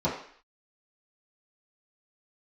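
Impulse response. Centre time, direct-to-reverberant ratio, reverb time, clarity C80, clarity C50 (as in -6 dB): 34 ms, -10.5 dB, 0.55 s, 9.0 dB, 5.5 dB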